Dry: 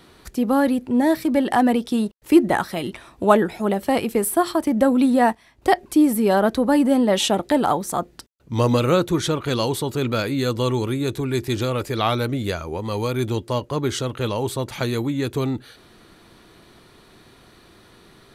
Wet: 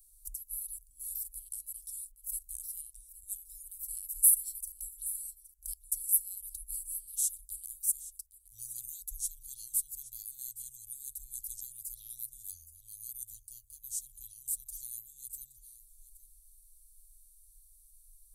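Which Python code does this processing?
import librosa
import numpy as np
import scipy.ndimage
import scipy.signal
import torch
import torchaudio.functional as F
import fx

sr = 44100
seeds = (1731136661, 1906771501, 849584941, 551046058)

y = scipy.signal.sosfilt(scipy.signal.cheby2(4, 80, [180.0, 1900.0], 'bandstop', fs=sr, output='sos'), x)
y = fx.hum_notches(y, sr, base_hz=50, count=5)
y = y + 10.0 ** (-16.0 / 20.0) * np.pad(y, (int(819 * sr / 1000.0), 0))[:len(y)]
y = y * 10.0 ** (5.5 / 20.0)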